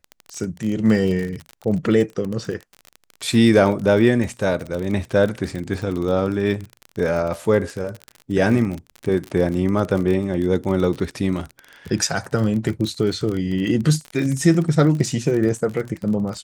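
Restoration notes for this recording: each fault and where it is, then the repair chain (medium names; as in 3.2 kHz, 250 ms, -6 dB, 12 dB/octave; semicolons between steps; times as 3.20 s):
crackle 35 per s -25 dBFS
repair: de-click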